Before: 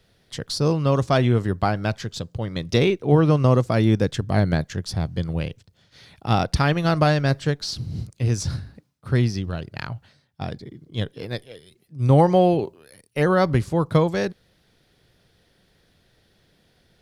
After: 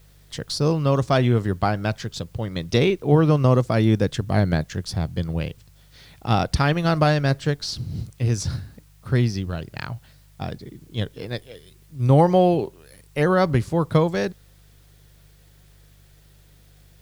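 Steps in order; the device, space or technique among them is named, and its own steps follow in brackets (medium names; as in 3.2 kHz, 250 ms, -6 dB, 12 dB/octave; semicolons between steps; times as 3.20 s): video cassette with head-switching buzz (mains buzz 50 Hz, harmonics 3, -53 dBFS; white noise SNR 39 dB)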